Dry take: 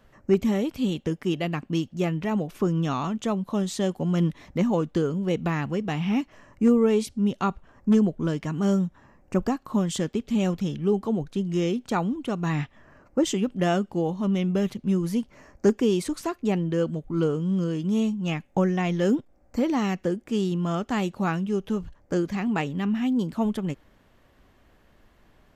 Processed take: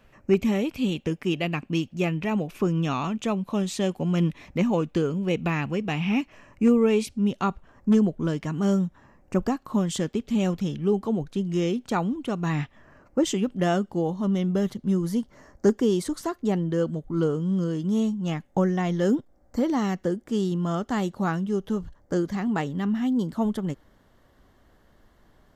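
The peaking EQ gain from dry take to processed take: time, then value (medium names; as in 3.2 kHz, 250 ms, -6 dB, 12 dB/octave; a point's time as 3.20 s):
peaking EQ 2.5 kHz 0.29 oct
7.03 s +9 dB
7.49 s -0.5 dB
13.37 s -0.5 dB
14.14 s -11.5 dB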